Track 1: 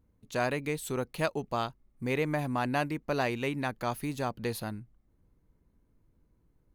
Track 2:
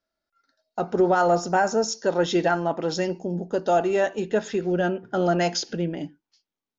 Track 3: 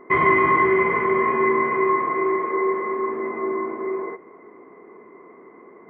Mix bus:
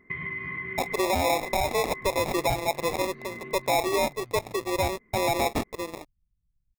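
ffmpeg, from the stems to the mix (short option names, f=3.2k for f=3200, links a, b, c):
-filter_complex "[0:a]aemphasis=mode=reproduction:type=bsi,volume=-19.5dB[a];[1:a]highpass=f=420:w=0.5412,highpass=f=420:w=1.3066,acrusher=samples=29:mix=1:aa=0.000001,aeval=exprs='sgn(val(0))*max(abs(val(0))-0.00841,0)':c=same,volume=3dB,asplit=2[b][c];[2:a]volume=-1.5dB[d];[c]apad=whole_len=259758[e];[d][e]sidechaincompress=threshold=-27dB:ratio=8:attack=33:release=572[f];[a][f]amix=inputs=2:normalize=0,firequalizer=gain_entry='entry(170,0);entry(330,-17);entry(970,-21);entry(2000,-2)':delay=0.05:min_phase=1,acompressor=threshold=-31dB:ratio=12,volume=0dB[g];[b][g]amix=inputs=2:normalize=0,alimiter=limit=-17.5dB:level=0:latency=1:release=36"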